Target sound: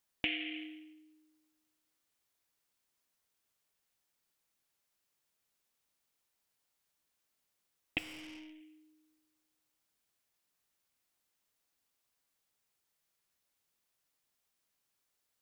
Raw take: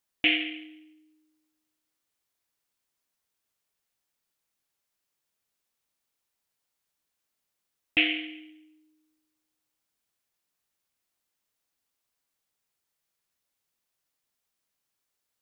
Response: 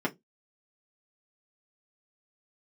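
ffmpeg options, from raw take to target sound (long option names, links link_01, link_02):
-filter_complex "[0:a]acompressor=threshold=-34dB:ratio=4,asettb=1/sr,asplit=3[link_01][link_02][link_03];[link_01]atrim=end=7.984[link_04];[link_02]atrim=start=7.98:end=8.61,asetpts=PTS-STARTPTS,afade=type=in:duration=0.004:curve=qsin,afade=type=out:start_time=0.626:duration=0.004:curve=qsin,aeval=exprs='(tanh(224*val(0)+0.2)-tanh(0.2))/224':channel_layout=same[link_05];[link_03]atrim=start=8.606[link_06];[link_04][link_05]acrossfade=duration=0.004:curve1=hsin:curve2=qsin[link_07];[link_07][link_06]acrossfade=duration=0.004:curve1=qsin:curve2=hsin"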